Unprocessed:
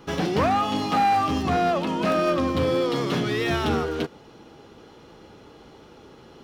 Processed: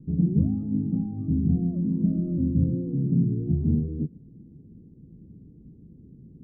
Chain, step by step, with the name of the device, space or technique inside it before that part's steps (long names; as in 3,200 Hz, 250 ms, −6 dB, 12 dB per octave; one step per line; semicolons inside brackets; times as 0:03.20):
the neighbour's flat through the wall (low-pass filter 240 Hz 24 dB per octave; parametric band 160 Hz +5 dB 0.67 octaves)
level +4 dB